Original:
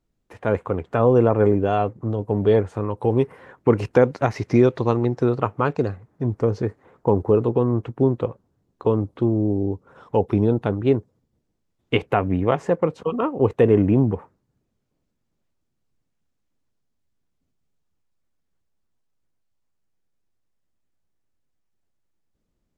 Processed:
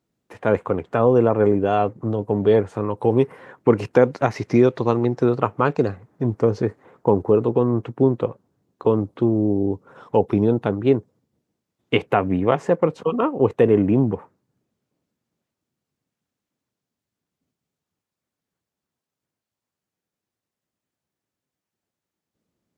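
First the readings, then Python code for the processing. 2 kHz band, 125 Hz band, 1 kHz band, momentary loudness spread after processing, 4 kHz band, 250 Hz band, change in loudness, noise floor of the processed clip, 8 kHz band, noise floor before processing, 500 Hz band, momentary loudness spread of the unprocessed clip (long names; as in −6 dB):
+1.5 dB, −1.5 dB, +1.5 dB, 8 LU, +1.5 dB, +1.0 dB, +1.0 dB, below −85 dBFS, can't be measured, −74 dBFS, +1.5 dB, 10 LU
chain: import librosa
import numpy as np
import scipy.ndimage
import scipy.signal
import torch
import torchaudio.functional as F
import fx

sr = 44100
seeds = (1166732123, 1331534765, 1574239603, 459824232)

p1 = scipy.signal.sosfilt(scipy.signal.butter(2, 120.0, 'highpass', fs=sr, output='sos'), x)
p2 = fx.rider(p1, sr, range_db=4, speed_s=0.5)
p3 = p1 + (p2 * librosa.db_to_amplitude(-3.0))
y = p3 * librosa.db_to_amplitude(-3.0)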